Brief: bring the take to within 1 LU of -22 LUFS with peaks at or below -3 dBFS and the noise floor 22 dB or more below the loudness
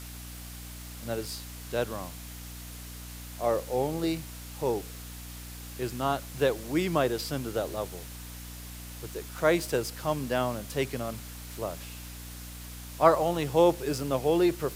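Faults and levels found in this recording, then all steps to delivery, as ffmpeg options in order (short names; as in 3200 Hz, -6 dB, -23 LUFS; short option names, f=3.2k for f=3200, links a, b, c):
hum 60 Hz; harmonics up to 300 Hz; hum level -41 dBFS; noise floor -43 dBFS; noise floor target -52 dBFS; loudness -29.5 LUFS; peak -7.0 dBFS; loudness target -22.0 LUFS
-> -af "bandreject=f=60:t=h:w=6,bandreject=f=120:t=h:w=6,bandreject=f=180:t=h:w=6,bandreject=f=240:t=h:w=6,bandreject=f=300:t=h:w=6"
-af "afftdn=nr=9:nf=-43"
-af "volume=7.5dB,alimiter=limit=-3dB:level=0:latency=1"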